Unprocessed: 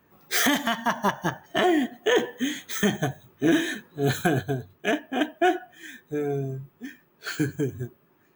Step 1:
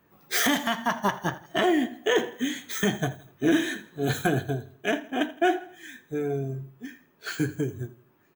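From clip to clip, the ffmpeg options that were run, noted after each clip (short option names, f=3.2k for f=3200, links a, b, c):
-af "flanger=delay=5.9:depth=5.8:regen=-75:speed=0.65:shape=sinusoidal,aecho=1:1:82|164|246:0.119|0.0511|0.022,volume=3dB"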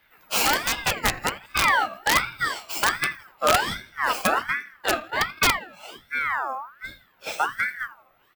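-af "aeval=exprs='(mod(4.73*val(0)+1,2)-1)/4.73':c=same,aeval=exprs='val(0)*sin(2*PI*1400*n/s+1400*0.35/1.3*sin(2*PI*1.3*n/s))':c=same,volume=5dB"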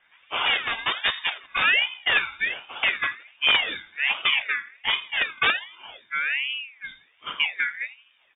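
-af "lowpass=f=3.1k:t=q:w=0.5098,lowpass=f=3.1k:t=q:w=0.6013,lowpass=f=3.1k:t=q:w=0.9,lowpass=f=3.1k:t=q:w=2.563,afreqshift=-3700"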